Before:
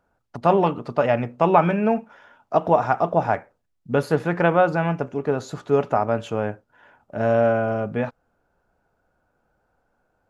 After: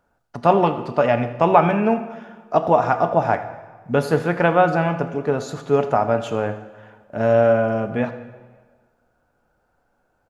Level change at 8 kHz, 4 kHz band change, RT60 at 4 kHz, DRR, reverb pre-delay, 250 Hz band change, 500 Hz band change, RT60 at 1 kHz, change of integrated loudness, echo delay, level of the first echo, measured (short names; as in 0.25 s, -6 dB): n/a, +3.5 dB, 1.2 s, 9.0 dB, 3 ms, +2.0 dB, +2.5 dB, 1.5 s, +2.0 dB, 80 ms, -18.5 dB